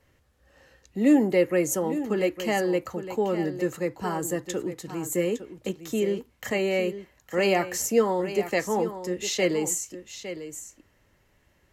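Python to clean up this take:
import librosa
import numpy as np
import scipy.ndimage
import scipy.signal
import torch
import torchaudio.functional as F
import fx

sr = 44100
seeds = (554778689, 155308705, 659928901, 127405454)

y = fx.fix_echo_inverse(x, sr, delay_ms=858, level_db=-11.5)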